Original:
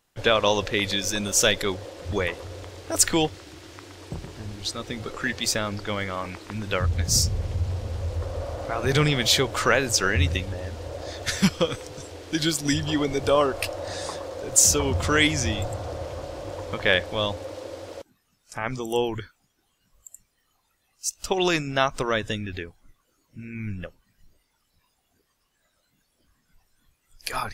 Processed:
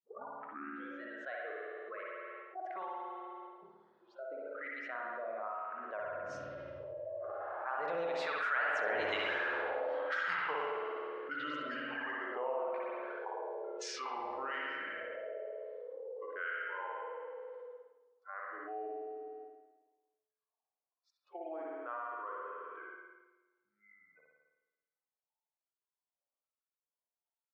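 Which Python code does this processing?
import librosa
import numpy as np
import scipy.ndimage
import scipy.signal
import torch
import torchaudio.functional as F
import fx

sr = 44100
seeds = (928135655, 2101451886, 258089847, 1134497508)

p1 = fx.tape_start_head(x, sr, length_s=1.13)
p2 = fx.doppler_pass(p1, sr, speed_mps=41, closest_m=6.5, pass_at_s=9.27)
p3 = fx.noise_reduce_blind(p2, sr, reduce_db=25)
p4 = fx.weighting(p3, sr, curve='A')
p5 = fx.env_lowpass(p4, sr, base_hz=690.0, full_db=-39.5)
p6 = fx.high_shelf(p5, sr, hz=3700.0, db=-11.0)
p7 = fx.wah_lfo(p6, sr, hz=1.1, low_hz=680.0, high_hz=1600.0, q=2.7)
p8 = p7 + fx.echo_filtered(p7, sr, ms=67, feedback_pct=65, hz=3900.0, wet_db=-8.0, dry=0)
p9 = fx.rev_spring(p8, sr, rt60_s=1.2, pass_ms=(53,), chirp_ms=45, drr_db=-1.5)
p10 = fx.env_flatten(p9, sr, amount_pct=70)
y = p10 * 10.0 ** (4.0 / 20.0)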